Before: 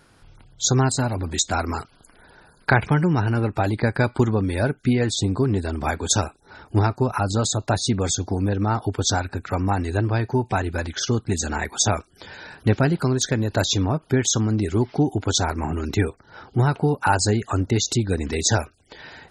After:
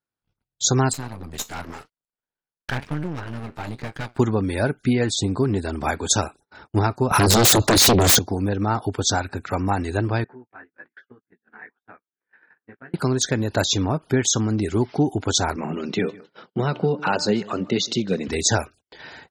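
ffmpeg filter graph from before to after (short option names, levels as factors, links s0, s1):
-filter_complex "[0:a]asettb=1/sr,asplit=3[s0][s1][s2];[s0]atrim=end=0.934[s3];[s1]atrim=start=0.93:end=4.18,asetpts=PTS-STARTPTS,afade=t=in:d=0.004:c=qsin,afade=t=out:st=3.246:d=0.004:c=qsin,flanger=delay=6.2:depth=7.2:regen=71:speed=1:shape=sinusoidal,aeval=exprs='max(val(0),0)':c=same[s4];[s2]atrim=start=4.176[s5];[s3][s4]acrossfade=d=0.004:c1=hsin:c2=qsin[s6];[s6][s5]acrossfade=d=0.004:c1=qsin:c2=hsin,asettb=1/sr,asplit=3[s7][s8][s9];[s7]atrim=end=7.114[s10];[s8]atrim=start=7.11:end=8.19,asetpts=PTS-STARTPTS,afade=t=in:d=0.004:c=qsin,afade=t=out:st=1.076:d=0.004:c=qsin,acrossover=split=210|3000[s11][s12][s13];[s12]acompressor=threshold=0.02:ratio=6:attack=3.2:release=140:knee=2.83:detection=peak[s14];[s11][s14][s13]amix=inputs=3:normalize=0,aeval=exprs='0.266*sin(PI/2*5.62*val(0)/0.266)':c=same[s15];[s9]atrim=start=8.186[s16];[s10][s15]acrossfade=d=0.004:c1=hsin:c2=qsin[s17];[s17][s16]acrossfade=d=0.004:c1=qsin:c2=hsin,asettb=1/sr,asplit=3[s18][s19][s20];[s18]atrim=end=10.244[s21];[s19]atrim=start=10.24:end=12.94,asetpts=PTS-STARTPTS,afade=t=in:d=0.004:c=qsin,afade=t=out:st=2.696:d=0.004:c=qsin,acompressor=threshold=0.00631:ratio=2:attack=3.2:release=140:knee=1:detection=peak,highpass=260,equalizer=f=360:t=q:w=4:g=-3,equalizer=f=610:t=q:w=4:g=-8,equalizer=f=870:t=q:w=4:g=-6,equalizer=f=1700:t=q:w=4:g=7,lowpass=f=2100:w=0.5412,lowpass=f=2100:w=1.3066,flanger=delay=15.5:depth=3.3:speed=1.1[s22];[s20]atrim=start=12.936[s23];[s21][s22]acrossfade=d=0.004:c1=hsin:c2=qsin[s24];[s24][s23]acrossfade=d=0.004:c1=qsin:c2=hsin,asettb=1/sr,asplit=3[s25][s26][s27];[s25]atrim=end=15.564[s28];[s26]atrim=start=15.56:end=18.28,asetpts=PTS-STARTPTS,afade=t=in:d=0.004:c=qsin,afade=t=out:st=2.716:d=0.004:c=qsin,highpass=f=150:w=0.5412,highpass=f=150:w=1.3066,equalizer=f=190:t=q:w=4:g=7,equalizer=f=290:t=q:w=4:g=-4,equalizer=f=530:t=q:w=4:g=5,equalizer=f=850:t=q:w=4:g=-7,equalizer=f=1600:t=q:w=4:g=-5,equalizer=f=3100:t=q:w=4:g=6,lowpass=f=5400:w=0.5412,lowpass=f=5400:w=1.3066,bandreject=f=297.4:t=h:w=4,bandreject=f=594.8:t=h:w=4,bandreject=f=892.2:t=h:w=4,bandreject=f=1189.6:t=h:w=4,bandreject=f=1487:t=h:w=4,bandreject=f=1784.4:t=h:w=4,bandreject=f=2081.8:t=h:w=4,aecho=1:1:156|312:0.0794|0.027,atrim=end_sample=119952[s29];[s27]atrim=start=18.276[s30];[s28][s29]acrossfade=d=0.004:c1=hsin:c2=qsin[s31];[s31][s30]acrossfade=d=0.004:c1=qsin:c2=hsin,agate=range=0.0141:threshold=0.00708:ratio=16:detection=peak,lowshelf=f=80:g=-9,volume=1.12"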